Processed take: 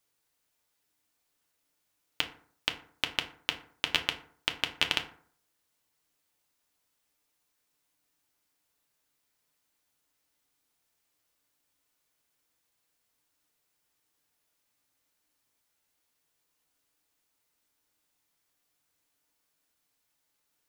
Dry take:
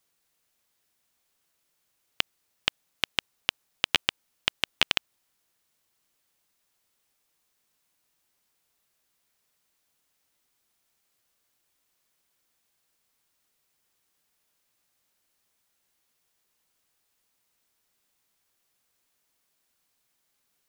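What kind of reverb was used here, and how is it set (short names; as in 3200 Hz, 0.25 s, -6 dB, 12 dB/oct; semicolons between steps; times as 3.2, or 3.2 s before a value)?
FDN reverb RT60 0.54 s, low-frequency decay 1.05×, high-frequency decay 0.5×, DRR 4 dB; gain -4 dB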